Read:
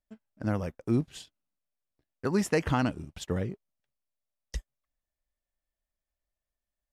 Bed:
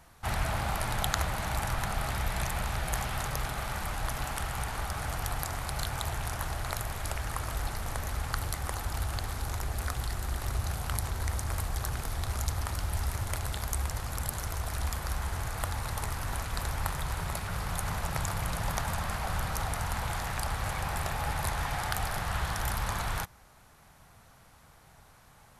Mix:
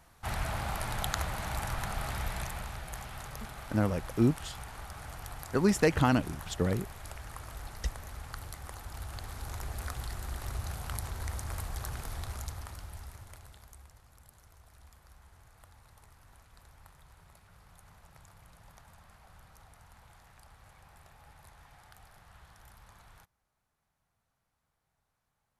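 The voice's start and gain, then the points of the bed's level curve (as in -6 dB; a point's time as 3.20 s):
3.30 s, +1.5 dB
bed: 2.26 s -3.5 dB
2.87 s -10 dB
8.85 s -10 dB
9.64 s -5 dB
12.16 s -5 dB
14.02 s -24.5 dB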